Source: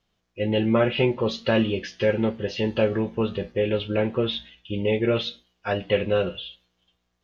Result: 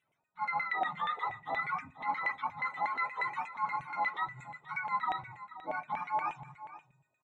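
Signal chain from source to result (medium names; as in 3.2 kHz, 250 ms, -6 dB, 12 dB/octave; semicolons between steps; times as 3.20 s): spectrum inverted on a logarithmic axis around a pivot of 670 Hz; treble shelf 3.8 kHz +7.5 dB; reverse; compression 6:1, threshold -34 dBFS, peak gain reduction 16 dB; reverse; LFO band-pass saw down 8.4 Hz 640–2300 Hz; Butterworth band-stop 4.6 kHz, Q 2.9; delay 481 ms -15 dB; on a send at -21 dB: reverberation RT60 0.65 s, pre-delay 3 ms; on the sum: trim +8 dB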